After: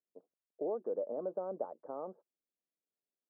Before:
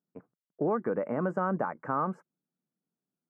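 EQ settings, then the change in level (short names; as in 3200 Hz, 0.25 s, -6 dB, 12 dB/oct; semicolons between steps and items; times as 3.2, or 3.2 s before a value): Chebyshev high-pass 420 Hz, order 2; ladder low-pass 730 Hz, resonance 40%; -1.0 dB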